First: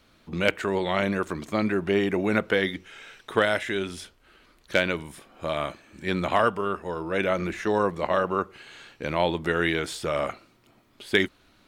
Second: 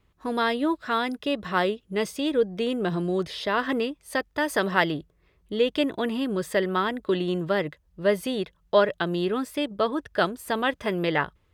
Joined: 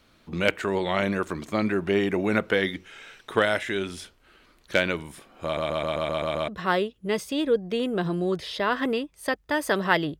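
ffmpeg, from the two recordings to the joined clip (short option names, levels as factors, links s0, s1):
-filter_complex "[0:a]apad=whole_dur=10.19,atrim=end=10.19,asplit=8[s0][s1][s2][s3][s4][s5][s6][s7];[s0]atrim=end=5.572[s8];[s1]atrim=start=5.438:end=5.572[s9];[s2]atrim=start=5.438:end=5.572[s10];[s3]atrim=start=5.438:end=5.572[s11];[s4]atrim=start=5.438:end=5.572[s12];[s5]atrim=start=5.438:end=5.572[s13];[s6]atrim=start=5.438:end=5.572[s14];[s7]atrim=start=5.438:end=5.572[s15];[1:a]atrim=start=1.348:end=5.06[s16];[s8][s9]acrossfade=d=0.004:c1=hsin:c2=hsin[s17];[s17][s10]acrossfade=d=0.004:c1=hsin:c2=hsin[s18];[s18][s11]acrossfade=d=0.004:c1=hsin:c2=hsin[s19];[s19][s12]acrossfade=d=0.004:c1=hsin:c2=hsin[s20];[s20][s13]acrossfade=d=0.004:c1=hsin:c2=hsin[s21];[s21][s14]acrossfade=d=0.004:c1=hsin:c2=hsin[s22];[s22][s15]acrossfade=d=0.004:c1=hsin:c2=hsin[s23];[s23][s16]acrossfade=d=0.004:c1=hsin:c2=hsin"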